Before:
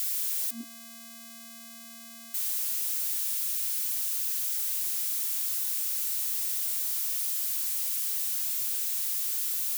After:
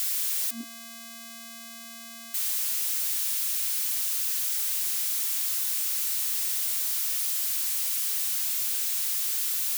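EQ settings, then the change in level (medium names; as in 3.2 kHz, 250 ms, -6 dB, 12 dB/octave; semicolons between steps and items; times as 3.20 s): bass shelf 430 Hz -6.5 dB; treble shelf 6 kHz -5.5 dB; +7.0 dB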